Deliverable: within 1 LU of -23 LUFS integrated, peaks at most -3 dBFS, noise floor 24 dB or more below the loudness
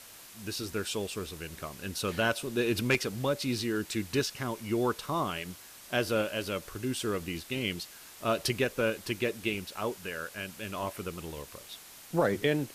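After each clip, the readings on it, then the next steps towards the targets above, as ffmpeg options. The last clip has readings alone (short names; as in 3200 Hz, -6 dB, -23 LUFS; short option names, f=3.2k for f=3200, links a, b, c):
noise floor -51 dBFS; noise floor target -57 dBFS; loudness -32.5 LUFS; peak -13.5 dBFS; loudness target -23.0 LUFS
-> -af "afftdn=nr=6:nf=-51"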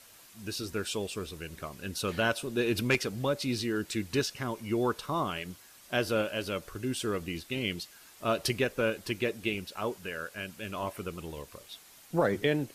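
noise floor -55 dBFS; noise floor target -57 dBFS
-> -af "afftdn=nr=6:nf=-55"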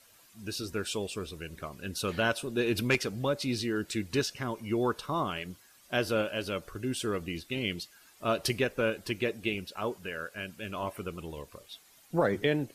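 noise floor -60 dBFS; loudness -32.5 LUFS; peak -13.5 dBFS; loudness target -23.0 LUFS
-> -af "volume=9.5dB"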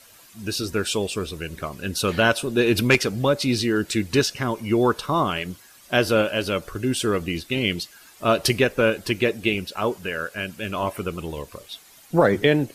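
loudness -23.0 LUFS; peak -4.0 dBFS; noise floor -50 dBFS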